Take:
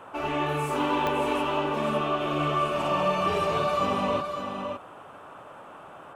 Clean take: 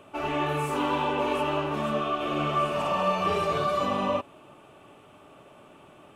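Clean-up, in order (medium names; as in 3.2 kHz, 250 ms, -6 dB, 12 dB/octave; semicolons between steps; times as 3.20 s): de-click; noise print and reduce 7 dB; inverse comb 560 ms -6.5 dB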